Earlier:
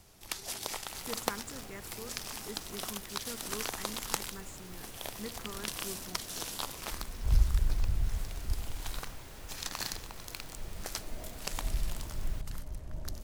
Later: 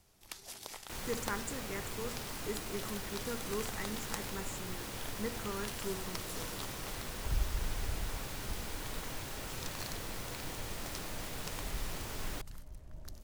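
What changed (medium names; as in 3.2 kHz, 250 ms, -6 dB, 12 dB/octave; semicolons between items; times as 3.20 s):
speech: send on; first sound -8.5 dB; second sound +8.0 dB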